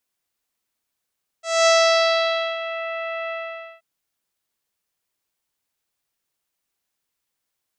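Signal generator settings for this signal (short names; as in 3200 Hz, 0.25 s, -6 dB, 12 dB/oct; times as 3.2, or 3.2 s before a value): synth note saw E5 24 dB/oct, low-pass 2700 Hz, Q 1.9, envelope 1.5 oct, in 1.40 s, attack 0.231 s, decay 0.91 s, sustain -14 dB, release 0.51 s, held 1.87 s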